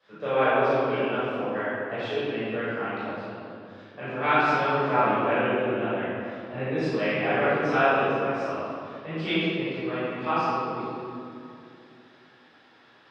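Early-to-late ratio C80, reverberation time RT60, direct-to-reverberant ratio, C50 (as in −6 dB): −2.5 dB, 2.6 s, −14.5 dB, −6.0 dB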